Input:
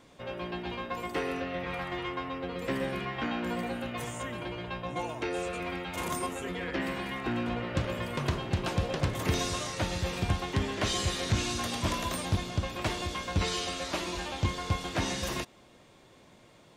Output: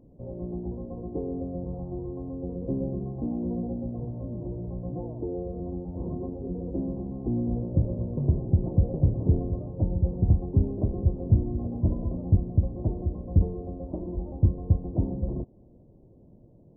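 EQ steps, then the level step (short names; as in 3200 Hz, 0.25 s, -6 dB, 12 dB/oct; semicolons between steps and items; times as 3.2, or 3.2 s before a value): Gaussian blur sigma 17 samples; low shelf 110 Hz +7.5 dB; +5.0 dB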